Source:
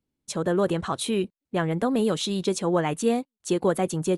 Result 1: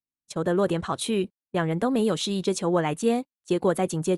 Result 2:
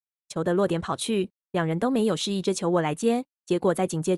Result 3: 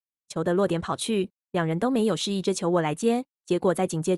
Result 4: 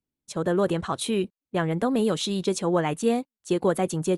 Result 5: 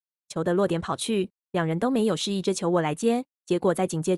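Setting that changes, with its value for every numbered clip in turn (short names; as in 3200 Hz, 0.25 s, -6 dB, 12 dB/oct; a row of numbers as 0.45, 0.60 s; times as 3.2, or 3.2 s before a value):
gate, range: -22, -59, -34, -7, -47 dB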